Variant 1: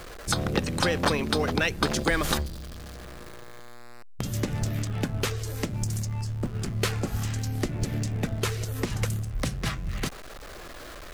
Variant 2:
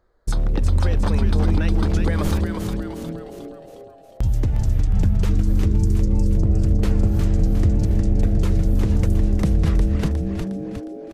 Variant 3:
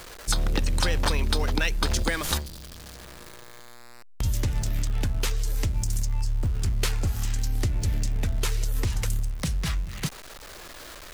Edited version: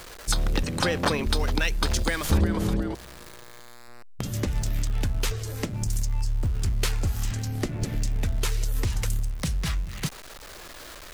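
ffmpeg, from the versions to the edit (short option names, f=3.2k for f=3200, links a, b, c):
-filter_complex "[0:a]asplit=4[a][b][c][d];[2:a]asplit=6[e][f][g][h][i][j];[e]atrim=end=0.632[k];[a]atrim=start=0.628:end=1.262[l];[f]atrim=start=1.258:end=2.302[m];[1:a]atrim=start=2.298:end=2.952[n];[g]atrim=start=2.948:end=3.882[o];[b]atrim=start=3.878:end=4.472[p];[h]atrim=start=4.468:end=5.312[q];[c]atrim=start=5.308:end=5.872[r];[i]atrim=start=5.868:end=7.312[s];[d]atrim=start=7.308:end=7.952[t];[j]atrim=start=7.948[u];[k][l]acrossfade=d=0.004:c1=hsin:c2=hsin[v];[v][m]acrossfade=d=0.004:c1=hsin:c2=hsin[w];[w][n]acrossfade=d=0.004:c1=hsin:c2=hsin[x];[x][o]acrossfade=d=0.004:c1=hsin:c2=hsin[y];[y][p]acrossfade=d=0.004:c1=hsin:c2=hsin[z];[z][q]acrossfade=d=0.004:c1=hsin:c2=hsin[aa];[aa][r]acrossfade=d=0.004:c1=hsin:c2=hsin[ab];[ab][s]acrossfade=d=0.004:c1=hsin:c2=hsin[ac];[ac][t]acrossfade=d=0.004:c1=hsin:c2=hsin[ad];[ad][u]acrossfade=d=0.004:c1=hsin:c2=hsin"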